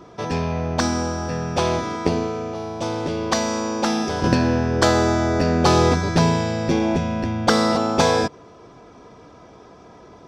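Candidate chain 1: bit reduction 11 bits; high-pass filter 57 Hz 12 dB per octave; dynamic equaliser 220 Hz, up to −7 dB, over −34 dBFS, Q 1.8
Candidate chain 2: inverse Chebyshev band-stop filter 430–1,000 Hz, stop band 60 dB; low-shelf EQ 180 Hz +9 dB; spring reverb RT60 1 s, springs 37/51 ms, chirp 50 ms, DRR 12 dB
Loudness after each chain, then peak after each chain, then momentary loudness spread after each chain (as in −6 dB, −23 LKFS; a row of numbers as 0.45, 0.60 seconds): −22.0, −21.5 LKFS; −2.0, −4.0 dBFS; 9, 11 LU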